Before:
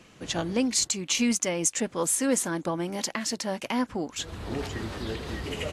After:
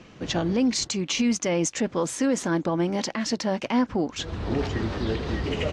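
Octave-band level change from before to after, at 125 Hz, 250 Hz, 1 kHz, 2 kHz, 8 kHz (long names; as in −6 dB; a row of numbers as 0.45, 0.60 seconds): +6.5, +4.5, +3.0, +1.5, −4.5 decibels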